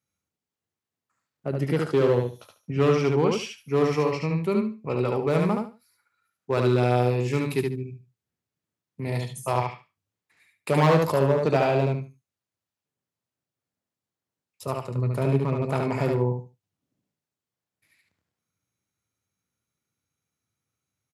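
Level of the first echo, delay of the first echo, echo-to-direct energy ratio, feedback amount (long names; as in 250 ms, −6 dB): −3.5 dB, 73 ms, −3.5 dB, 20%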